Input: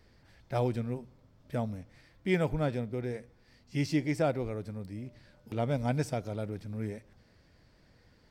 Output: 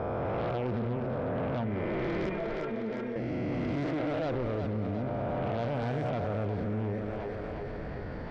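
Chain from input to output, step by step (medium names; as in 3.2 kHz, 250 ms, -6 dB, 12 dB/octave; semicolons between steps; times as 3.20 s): reverse spectral sustain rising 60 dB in 2.09 s; low-pass 1.6 kHz 12 dB/octave; peak limiter -23.5 dBFS, peak gain reduction 9.5 dB; 2.29–3.16 s: inharmonic resonator 220 Hz, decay 0.22 s, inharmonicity 0.002; Chebyshev shaper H 5 -16 dB, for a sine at -23.5 dBFS; on a send: two-band feedback delay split 330 Hz, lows 93 ms, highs 358 ms, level -9.5 dB; on the sum: level flattener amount 70%; trim -3 dB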